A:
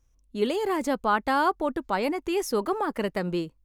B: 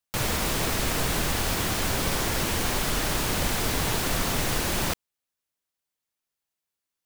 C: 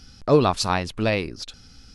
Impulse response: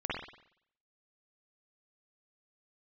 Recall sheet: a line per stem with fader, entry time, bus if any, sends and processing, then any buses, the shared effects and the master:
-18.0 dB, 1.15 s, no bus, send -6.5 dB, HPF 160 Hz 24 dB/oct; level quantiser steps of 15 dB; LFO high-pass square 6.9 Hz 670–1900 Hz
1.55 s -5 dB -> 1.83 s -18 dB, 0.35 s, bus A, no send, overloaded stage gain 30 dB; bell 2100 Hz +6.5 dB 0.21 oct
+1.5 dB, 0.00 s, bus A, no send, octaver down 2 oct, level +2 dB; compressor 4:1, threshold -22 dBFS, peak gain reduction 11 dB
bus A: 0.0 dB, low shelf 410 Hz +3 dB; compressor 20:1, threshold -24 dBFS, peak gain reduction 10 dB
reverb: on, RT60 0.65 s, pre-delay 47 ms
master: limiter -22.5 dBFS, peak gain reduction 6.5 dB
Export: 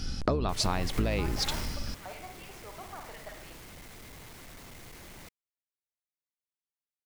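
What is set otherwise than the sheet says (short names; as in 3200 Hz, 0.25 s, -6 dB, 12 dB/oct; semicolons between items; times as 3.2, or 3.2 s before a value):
stem A: entry 1.15 s -> 0.10 s; stem C +1.5 dB -> +8.0 dB; master: missing limiter -22.5 dBFS, peak gain reduction 6.5 dB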